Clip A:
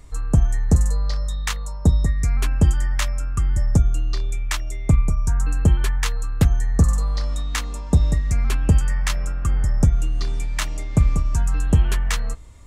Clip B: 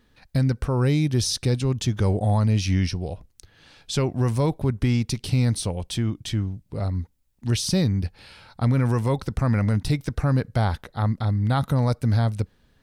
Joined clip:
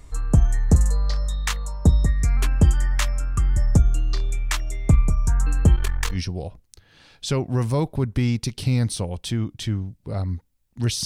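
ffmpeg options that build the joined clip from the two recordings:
ffmpeg -i cue0.wav -i cue1.wav -filter_complex "[0:a]asettb=1/sr,asplit=3[link_01][link_02][link_03];[link_01]atrim=end=5.754[link_04];[link_02]atrim=start=5.75:end=6.2,asetpts=PTS-STARTPTS,afade=type=in:duration=0.004:curve=qsin,afade=type=out:start_time=0.446:duration=0.004:curve=qsin,aeval=exprs='if(lt(val(0),0),0.251*val(0),val(0))':channel_layout=same[link_05];[link_03]atrim=start=6.196[link_06];[link_04][link_05]acrossfade=duration=0.004:curve1=hsin:curve2=qsin[link_07];[link_07][link_06]acrossfade=duration=0.004:curve1=qsin:curve2=hsin,apad=whole_dur=11.05,atrim=end=11.05,atrim=end=6.2,asetpts=PTS-STARTPTS[link_08];[1:a]atrim=start=2.76:end=7.71,asetpts=PTS-STARTPTS[link_09];[link_08][link_09]acrossfade=duration=0.1:curve1=tri:curve2=tri" out.wav

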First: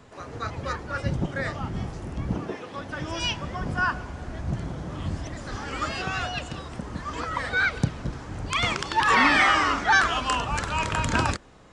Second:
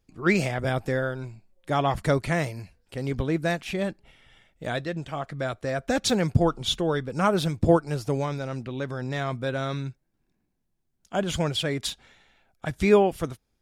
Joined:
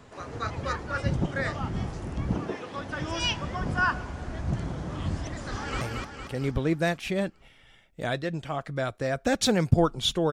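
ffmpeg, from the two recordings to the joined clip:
ffmpeg -i cue0.wav -i cue1.wav -filter_complex "[0:a]apad=whole_dur=10.32,atrim=end=10.32,atrim=end=5.812[link_01];[1:a]atrim=start=2.438:end=6.95[link_02];[link_01][link_02]acrossfade=duration=0.004:curve1=hsin:curve2=hsin,asplit=2[link_03][link_04];[link_04]afade=type=in:start_time=5.49:duration=0.01,afade=type=out:start_time=5.81:duration=0.01,aecho=0:1:230|460|690|920|1150|1380|1610|1840:0.707946|0.38937|0.214154|0.117784|0.0647815|0.0356298|0.0195964|0.010778[link_05];[link_03][link_05]amix=inputs=2:normalize=0" out.wav

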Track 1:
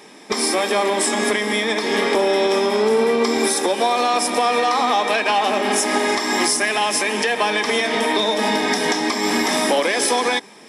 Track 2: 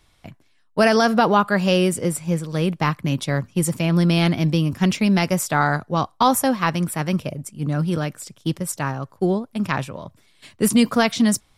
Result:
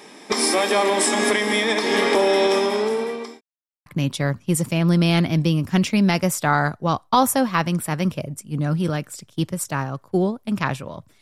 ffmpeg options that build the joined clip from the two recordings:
ffmpeg -i cue0.wav -i cue1.wav -filter_complex "[0:a]apad=whole_dur=11.21,atrim=end=11.21,asplit=2[link_01][link_02];[link_01]atrim=end=3.41,asetpts=PTS-STARTPTS,afade=type=out:start_time=2.47:duration=0.94[link_03];[link_02]atrim=start=3.41:end=3.86,asetpts=PTS-STARTPTS,volume=0[link_04];[1:a]atrim=start=2.94:end=10.29,asetpts=PTS-STARTPTS,afade=type=in:duration=0.004:curve=hsin[link_05];[link_03][link_04][link_05]concat=n=3:v=0:a=1" out.wav

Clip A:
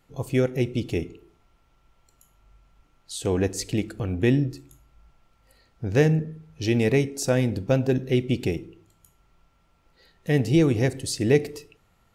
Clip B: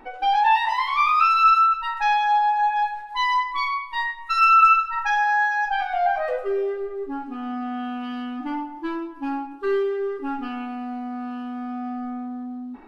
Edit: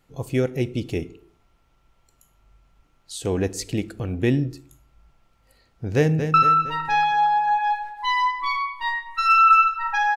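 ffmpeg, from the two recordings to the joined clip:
ffmpeg -i cue0.wav -i cue1.wav -filter_complex "[0:a]apad=whole_dur=10.16,atrim=end=10.16,atrim=end=6.342[link_01];[1:a]atrim=start=1.458:end=5.28[link_02];[link_01][link_02]acrossfade=duration=0.004:curve1=hsin:curve2=hsin,asplit=2[link_03][link_04];[link_04]afade=type=in:start_time=5.95:duration=0.01,afade=type=out:start_time=6.34:duration=0.01,aecho=0:1:230|460|690|920|1150|1380:0.375837|0.187919|0.0939594|0.0469797|0.0234898|0.0117449[link_05];[link_03][link_05]amix=inputs=2:normalize=0" out.wav

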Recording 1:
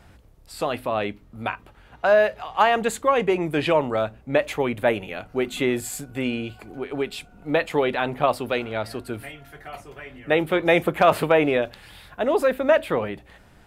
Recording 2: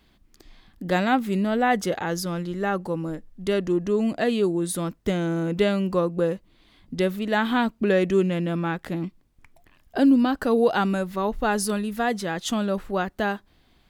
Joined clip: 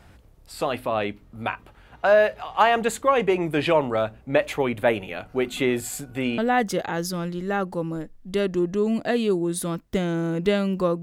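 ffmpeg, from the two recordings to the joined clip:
ffmpeg -i cue0.wav -i cue1.wav -filter_complex "[0:a]apad=whole_dur=11.02,atrim=end=11.02,atrim=end=6.382[link_01];[1:a]atrim=start=1.508:end=6.15[link_02];[link_01][link_02]acrossfade=duration=0.004:curve1=hsin:curve2=hsin" out.wav

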